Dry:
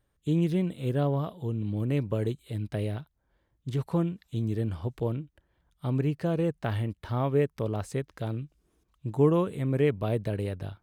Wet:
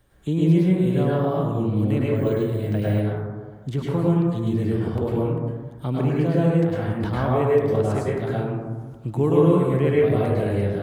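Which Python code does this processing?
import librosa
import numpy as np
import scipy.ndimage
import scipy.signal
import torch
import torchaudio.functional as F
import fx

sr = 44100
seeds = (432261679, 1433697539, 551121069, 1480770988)

y = fx.over_compress(x, sr, threshold_db=-33.0, ratio=-0.5, at=(6.6, 7.08), fade=0.02)
y = fx.rev_plate(y, sr, seeds[0], rt60_s=1.2, hf_ratio=0.3, predelay_ms=90, drr_db=-7.0)
y = fx.resample_bad(y, sr, factor=2, down='none', up='hold', at=(2.16, 3.0))
y = fx.band_squash(y, sr, depth_pct=40)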